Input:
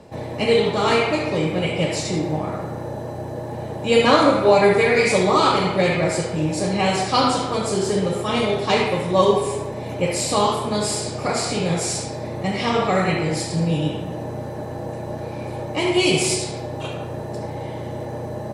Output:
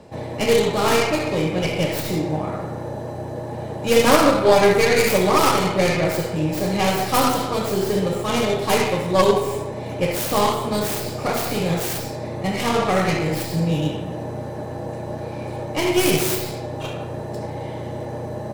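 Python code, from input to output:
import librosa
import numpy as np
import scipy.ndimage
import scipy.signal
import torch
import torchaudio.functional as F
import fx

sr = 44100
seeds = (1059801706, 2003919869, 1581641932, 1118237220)

y = fx.tracing_dist(x, sr, depth_ms=0.39)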